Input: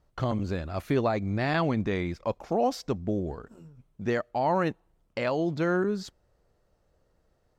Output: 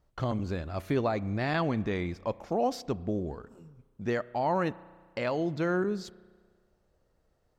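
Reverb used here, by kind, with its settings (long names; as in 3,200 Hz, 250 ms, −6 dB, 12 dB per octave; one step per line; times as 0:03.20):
spring reverb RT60 1.6 s, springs 33 ms, chirp 40 ms, DRR 19.5 dB
level −2.5 dB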